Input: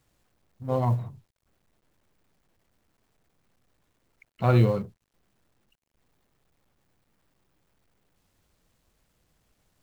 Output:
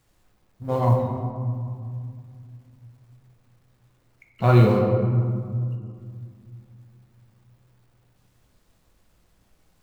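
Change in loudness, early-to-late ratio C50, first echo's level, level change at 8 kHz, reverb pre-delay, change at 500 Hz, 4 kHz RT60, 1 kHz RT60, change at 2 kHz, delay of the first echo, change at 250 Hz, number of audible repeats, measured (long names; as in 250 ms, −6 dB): +2.5 dB, 3.0 dB, no echo audible, can't be measured, 5 ms, +6.5 dB, 1.1 s, 2.2 s, +5.0 dB, no echo audible, +6.5 dB, no echo audible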